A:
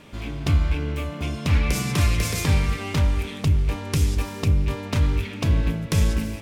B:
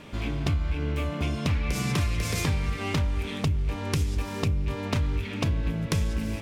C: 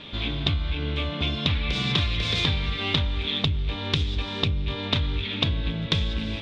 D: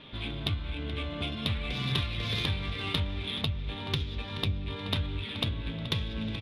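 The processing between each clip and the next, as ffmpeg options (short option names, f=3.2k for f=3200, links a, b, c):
-af "highshelf=f=7.5k:g=-5.5,acompressor=threshold=-25dB:ratio=6,volume=2dB"
-af "lowpass=f=3.6k:t=q:w=7.9"
-af "flanger=delay=7.4:depth=3.7:regen=54:speed=0.52:shape=triangular,aecho=1:1:428|856|1284|1712|2140:0.251|0.118|0.0555|0.0261|0.0123,adynamicsmooth=sensitivity=2.5:basefreq=4.4k,volume=-2dB"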